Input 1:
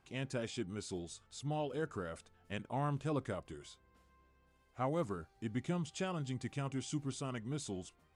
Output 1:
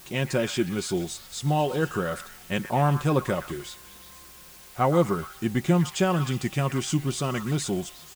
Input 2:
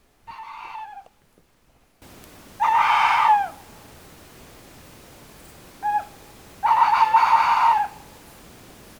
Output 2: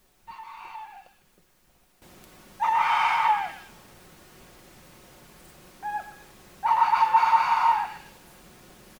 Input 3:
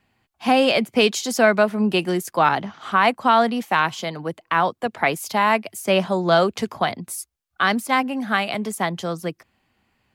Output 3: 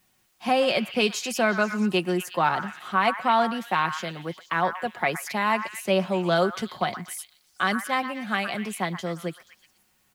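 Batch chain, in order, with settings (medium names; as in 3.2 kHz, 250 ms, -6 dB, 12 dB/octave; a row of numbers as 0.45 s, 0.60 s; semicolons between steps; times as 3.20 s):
added noise white -63 dBFS; comb 5.5 ms, depth 39%; on a send: repeats whose band climbs or falls 120 ms, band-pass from 1.4 kHz, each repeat 0.7 oct, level -7 dB; on the sum: peak normalisation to -9 dBFS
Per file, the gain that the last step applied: +13.5 dB, -6.0 dB, -6.0 dB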